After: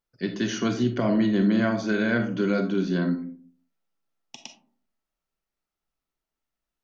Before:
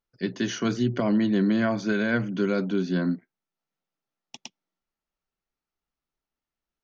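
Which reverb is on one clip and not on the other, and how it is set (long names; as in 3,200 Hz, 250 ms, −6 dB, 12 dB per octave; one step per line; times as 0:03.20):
comb and all-pass reverb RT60 0.51 s, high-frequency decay 0.35×, pre-delay 0 ms, DRR 5.5 dB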